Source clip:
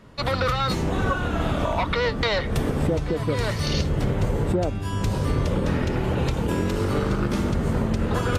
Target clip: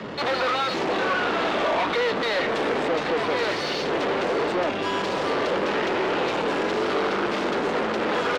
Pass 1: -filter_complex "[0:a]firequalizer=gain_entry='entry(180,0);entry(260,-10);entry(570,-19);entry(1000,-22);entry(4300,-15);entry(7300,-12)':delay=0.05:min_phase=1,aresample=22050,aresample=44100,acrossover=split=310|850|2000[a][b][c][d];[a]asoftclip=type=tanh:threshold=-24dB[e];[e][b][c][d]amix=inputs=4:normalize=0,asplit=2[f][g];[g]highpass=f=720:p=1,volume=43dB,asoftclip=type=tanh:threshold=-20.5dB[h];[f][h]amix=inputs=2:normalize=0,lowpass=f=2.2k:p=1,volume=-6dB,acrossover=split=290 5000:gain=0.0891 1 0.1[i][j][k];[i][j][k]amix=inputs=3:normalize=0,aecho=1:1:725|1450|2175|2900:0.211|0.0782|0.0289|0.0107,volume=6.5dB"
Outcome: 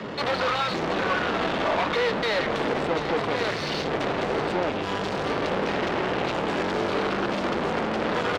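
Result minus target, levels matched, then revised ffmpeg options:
soft clip: distortion -7 dB
-filter_complex "[0:a]firequalizer=gain_entry='entry(180,0);entry(260,-10);entry(570,-19);entry(1000,-22);entry(4300,-15);entry(7300,-12)':delay=0.05:min_phase=1,aresample=22050,aresample=44100,acrossover=split=310|850|2000[a][b][c][d];[a]asoftclip=type=tanh:threshold=-36dB[e];[e][b][c][d]amix=inputs=4:normalize=0,asplit=2[f][g];[g]highpass=f=720:p=1,volume=43dB,asoftclip=type=tanh:threshold=-20.5dB[h];[f][h]amix=inputs=2:normalize=0,lowpass=f=2.2k:p=1,volume=-6dB,acrossover=split=290 5000:gain=0.0891 1 0.1[i][j][k];[i][j][k]amix=inputs=3:normalize=0,aecho=1:1:725|1450|2175|2900:0.211|0.0782|0.0289|0.0107,volume=6.5dB"

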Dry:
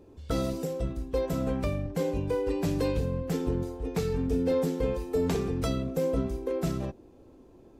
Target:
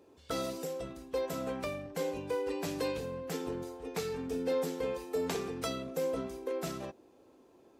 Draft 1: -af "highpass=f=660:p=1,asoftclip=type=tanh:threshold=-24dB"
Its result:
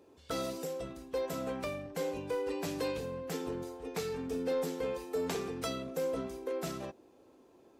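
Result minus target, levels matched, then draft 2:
soft clip: distortion +18 dB
-af "highpass=f=660:p=1,asoftclip=type=tanh:threshold=-14dB"

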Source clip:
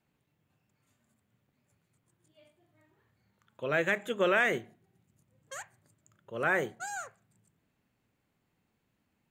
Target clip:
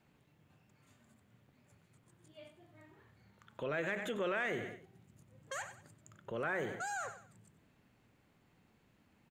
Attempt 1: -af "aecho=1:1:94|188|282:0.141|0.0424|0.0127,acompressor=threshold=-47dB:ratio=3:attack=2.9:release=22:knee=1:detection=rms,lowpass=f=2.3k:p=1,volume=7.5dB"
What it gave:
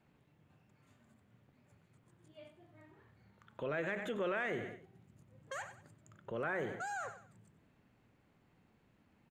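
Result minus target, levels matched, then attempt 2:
8000 Hz band -5.0 dB
-af "aecho=1:1:94|188|282:0.141|0.0424|0.0127,acompressor=threshold=-47dB:ratio=3:attack=2.9:release=22:knee=1:detection=rms,lowpass=f=5.7k:p=1,volume=7.5dB"

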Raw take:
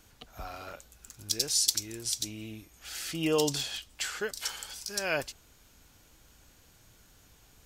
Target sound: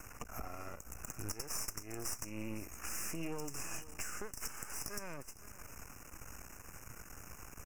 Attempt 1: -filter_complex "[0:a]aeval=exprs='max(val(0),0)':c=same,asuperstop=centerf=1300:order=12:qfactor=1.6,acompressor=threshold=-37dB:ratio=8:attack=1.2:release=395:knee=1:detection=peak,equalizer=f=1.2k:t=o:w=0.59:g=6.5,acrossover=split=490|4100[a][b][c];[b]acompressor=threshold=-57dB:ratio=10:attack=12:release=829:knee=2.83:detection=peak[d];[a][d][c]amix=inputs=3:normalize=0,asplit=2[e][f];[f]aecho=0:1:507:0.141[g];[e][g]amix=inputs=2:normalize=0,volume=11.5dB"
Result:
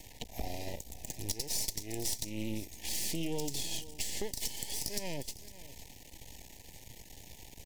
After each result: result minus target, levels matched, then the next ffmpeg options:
compressor: peak gain reduction -5 dB; 4000 Hz band +4.5 dB
-filter_complex "[0:a]aeval=exprs='max(val(0),0)':c=same,asuperstop=centerf=1300:order=12:qfactor=1.6,acompressor=threshold=-44.5dB:ratio=8:attack=1.2:release=395:knee=1:detection=peak,equalizer=f=1.2k:t=o:w=0.59:g=6.5,acrossover=split=490|4100[a][b][c];[b]acompressor=threshold=-57dB:ratio=10:attack=12:release=829:knee=2.83:detection=peak[d];[a][d][c]amix=inputs=3:normalize=0,asplit=2[e][f];[f]aecho=0:1:507:0.141[g];[e][g]amix=inputs=2:normalize=0,volume=11.5dB"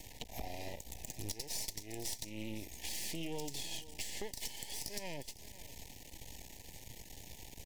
4000 Hz band +6.5 dB
-filter_complex "[0:a]aeval=exprs='max(val(0),0)':c=same,asuperstop=centerf=3800:order=12:qfactor=1.6,acompressor=threshold=-44.5dB:ratio=8:attack=1.2:release=395:knee=1:detection=peak,equalizer=f=1.2k:t=o:w=0.59:g=6.5,acrossover=split=490|4100[a][b][c];[b]acompressor=threshold=-57dB:ratio=10:attack=12:release=829:knee=2.83:detection=peak[d];[a][d][c]amix=inputs=3:normalize=0,asplit=2[e][f];[f]aecho=0:1:507:0.141[g];[e][g]amix=inputs=2:normalize=0,volume=11.5dB"

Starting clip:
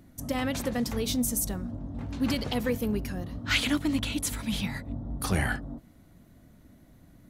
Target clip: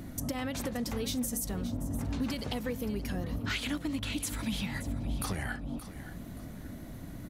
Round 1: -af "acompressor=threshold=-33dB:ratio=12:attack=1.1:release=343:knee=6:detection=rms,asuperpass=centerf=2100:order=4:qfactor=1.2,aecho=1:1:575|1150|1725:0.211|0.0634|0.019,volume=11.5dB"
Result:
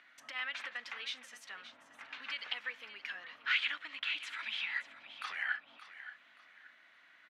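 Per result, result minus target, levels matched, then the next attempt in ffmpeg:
2000 Hz band +8.0 dB; compressor: peak gain reduction -5.5 dB
-af "acompressor=threshold=-33dB:ratio=12:attack=1.1:release=343:knee=6:detection=rms,aecho=1:1:575|1150|1725:0.211|0.0634|0.019,volume=11.5dB"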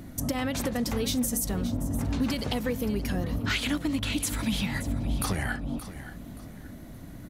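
compressor: peak gain reduction -5.5 dB
-af "acompressor=threshold=-39dB:ratio=12:attack=1.1:release=343:knee=6:detection=rms,aecho=1:1:575|1150|1725:0.211|0.0634|0.019,volume=11.5dB"

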